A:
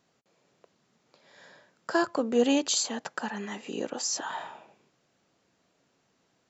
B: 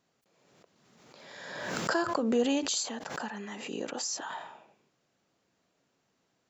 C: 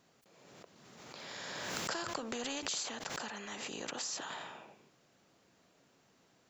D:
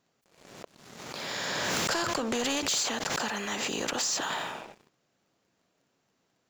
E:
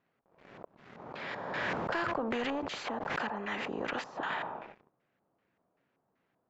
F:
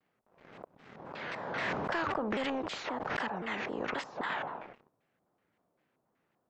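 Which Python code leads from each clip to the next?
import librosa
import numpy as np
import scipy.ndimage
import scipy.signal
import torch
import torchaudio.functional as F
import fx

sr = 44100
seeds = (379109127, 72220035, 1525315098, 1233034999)

y1 = fx.pre_swell(x, sr, db_per_s=35.0)
y1 = y1 * 10.0 ** (-4.5 / 20.0)
y2 = fx.spectral_comp(y1, sr, ratio=2.0)
y2 = y2 * 10.0 ** (-6.5 / 20.0)
y3 = fx.leveller(y2, sr, passes=3)
y4 = fx.filter_lfo_lowpass(y3, sr, shape='square', hz=2.6, low_hz=940.0, high_hz=2100.0, q=1.4)
y4 = y4 * 10.0 ** (-3.5 / 20.0)
y5 = fx.vibrato_shape(y4, sr, shape='saw_down', rate_hz=3.8, depth_cents=250.0)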